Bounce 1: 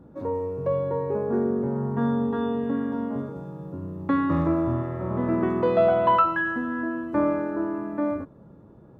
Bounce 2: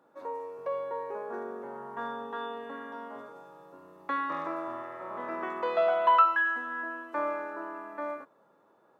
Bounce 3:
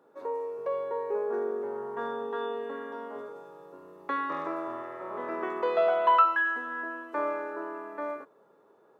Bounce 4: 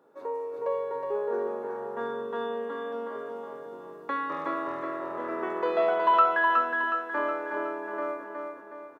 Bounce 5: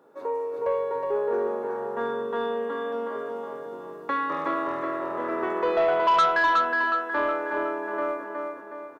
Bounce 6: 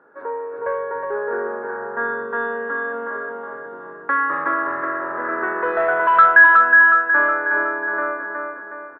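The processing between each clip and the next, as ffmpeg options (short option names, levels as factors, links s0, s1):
-af "highpass=850"
-af "equalizer=f=420:t=o:w=0.33:g=11"
-af "aecho=1:1:367|734|1101|1468|1835|2202:0.631|0.303|0.145|0.0698|0.0335|0.0161"
-af "asoftclip=type=tanh:threshold=0.106,volume=1.68"
-af "lowpass=f=1600:t=q:w=7"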